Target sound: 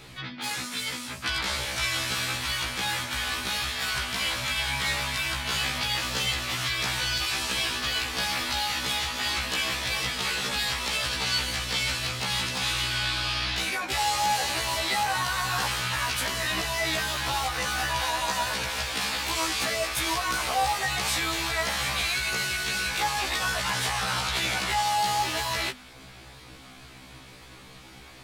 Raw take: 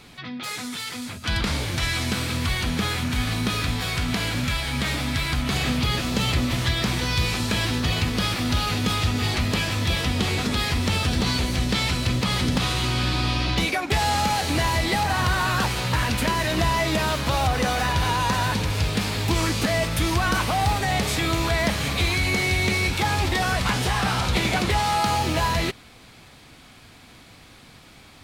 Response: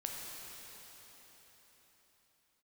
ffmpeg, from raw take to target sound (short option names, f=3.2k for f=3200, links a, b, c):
-filter_complex "[0:a]asplit=2[a][b];[b]asetrate=29433,aresample=44100,atempo=1.49831,volume=-9dB[c];[a][c]amix=inputs=2:normalize=0,bandreject=f=50:t=h:w=6,bandreject=f=100:t=h:w=6,bandreject=f=150:t=h:w=6,bandreject=f=200:t=h:w=6,bandreject=f=250:t=h:w=6,acrossover=split=600|4300[d][e][f];[d]acompressor=threshold=-39dB:ratio=8[g];[e]alimiter=limit=-21.5dB:level=0:latency=1:release=40[h];[g][h][f]amix=inputs=3:normalize=0,afftfilt=real='re*1.73*eq(mod(b,3),0)':imag='im*1.73*eq(mod(b,3),0)':win_size=2048:overlap=0.75,volume=3dB"